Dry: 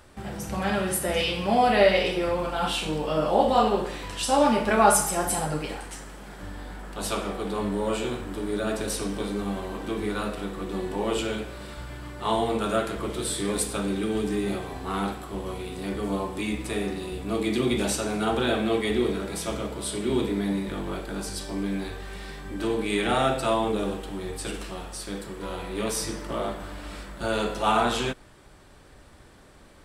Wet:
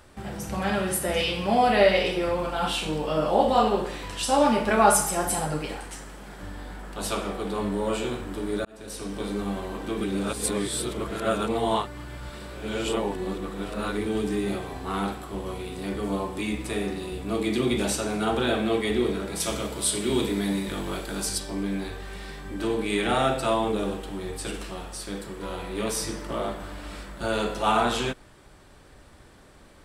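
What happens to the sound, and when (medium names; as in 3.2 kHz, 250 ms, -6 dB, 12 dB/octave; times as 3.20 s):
8.65–9.32 s: fade in
10.01–14.06 s: reverse
19.40–21.38 s: treble shelf 2.8 kHz +9 dB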